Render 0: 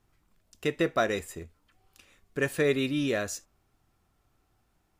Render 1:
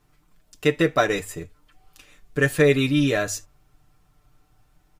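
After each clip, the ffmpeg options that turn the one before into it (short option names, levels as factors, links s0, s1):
-af "bandreject=f=50:t=h:w=6,bandreject=f=100:t=h:w=6,aecho=1:1:6.7:0.65,asubboost=boost=2:cutoff=160,volume=1.88"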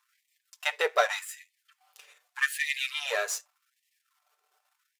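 -af "aeval=exprs='if(lt(val(0),0),0.447*val(0),val(0))':c=same,asubboost=boost=11.5:cutoff=140,afftfilt=real='re*gte(b*sr/1024,360*pow(1800/360,0.5+0.5*sin(2*PI*0.84*pts/sr)))':imag='im*gte(b*sr/1024,360*pow(1800/360,0.5+0.5*sin(2*PI*0.84*pts/sr)))':win_size=1024:overlap=0.75"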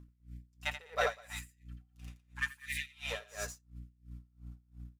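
-filter_complex "[0:a]aeval=exprs='val(0)+0.00631*(sin(2*PI*60*n/s)+sin(2*PI*2*60*n/s)/2+sin(2*PI*3*60*n/s)/3+sin(2*PI*4*60*n/s)/4+sin(2*PI*5*60*n/s)/5)':c=same,asplit=2[s0][s1];[s1]aecho=0:1:84.55|201.2:0.794|0.891[s2];[s0][s2]amix=inputs=2:normalize=0,aeval=exprs='val(0)*pow(10,-26*(0.5-0.5*cos(2*PI*2.9*n/s))/20)':c=same,volume=0.447"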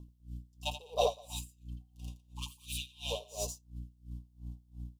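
-af "asuperstop=centerf=1700:order=12:qfactor=1,volume=1.68"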